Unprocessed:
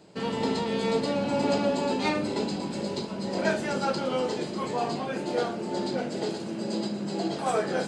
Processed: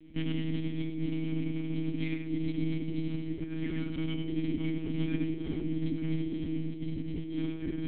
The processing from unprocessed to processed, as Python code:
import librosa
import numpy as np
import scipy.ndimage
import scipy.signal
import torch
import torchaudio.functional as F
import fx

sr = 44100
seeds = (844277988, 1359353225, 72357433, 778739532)

p1 = fx.low_shelf(x, sr, hz=380.0, db=10.5)
p2 = fx.notch(p1, sr, hz=780.0, q=12.0)
p3 = fx.over_compress(p2, sr, threshold_db=-27.0, ratio=-1.0)
p4 = fx.vowel_filter(p3, sr, vowel='i')
p5 = p4 + fx.echo_single(p4, sr, ms=95, db=-5.0, dry=0)
p6 = fx.lpc_monotone(p5, sr, seeds[0], pitch_hz=160.0, order=10)
y = p6 * librosa.db_to_amplitude(3.0)